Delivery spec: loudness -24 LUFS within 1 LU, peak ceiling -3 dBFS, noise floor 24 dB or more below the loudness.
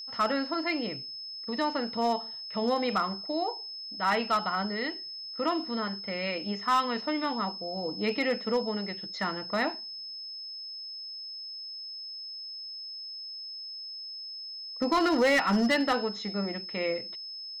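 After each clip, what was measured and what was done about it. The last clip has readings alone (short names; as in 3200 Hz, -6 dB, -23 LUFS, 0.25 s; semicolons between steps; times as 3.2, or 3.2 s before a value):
clipped 0.7%; flat tops at -19.5 dBFS; steady tone 5200 Hz; tone level -38 dBFS; loudness -30.5 LUFS; peak -19.5 dBFS; loudness target -24.0 LUFS
-> clip repair -19.5 dBFS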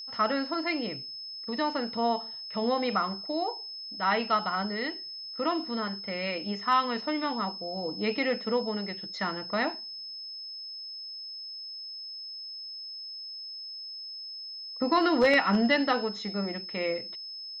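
clipped 0.0%; steady tone 5200 Hz; tone level -38 dBFS
-> notch 5200 Hz, Q 30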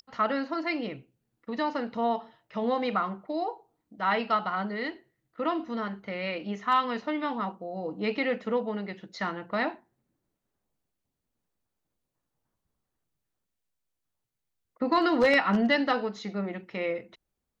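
steady tone none; loudness -29.5 LUFS; peak -10.0 dBFS; loudness target -24.0 LUFS
-> gain +5.5 dB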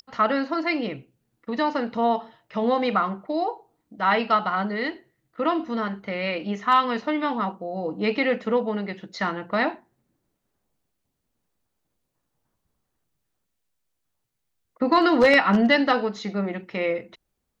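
loudness -24.0 LUFS; peak -4.5 dBFS; noise floor -78 dBFS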